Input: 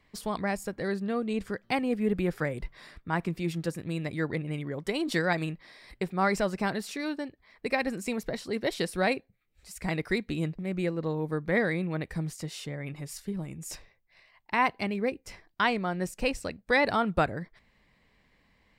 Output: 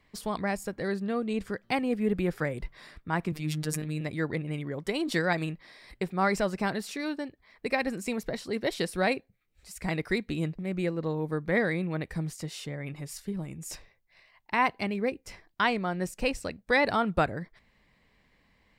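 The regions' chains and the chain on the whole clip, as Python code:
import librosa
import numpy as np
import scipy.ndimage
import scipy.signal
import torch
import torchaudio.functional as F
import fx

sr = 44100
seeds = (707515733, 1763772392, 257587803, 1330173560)

y = fx.chain(x, sr, fx.robotise(hz=153.0),
    fx.sustainer(db_per_s=34.0), at=(3.32, 4.01))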